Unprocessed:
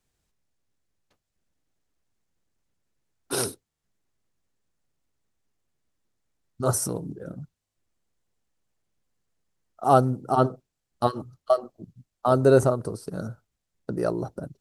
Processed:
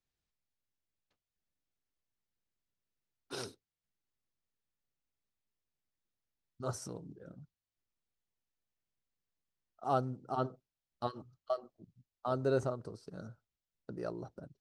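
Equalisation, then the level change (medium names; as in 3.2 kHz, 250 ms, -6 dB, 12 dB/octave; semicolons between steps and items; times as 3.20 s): distance through air 180 m; pre-emphasis filter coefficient 0.8; 0.0 dB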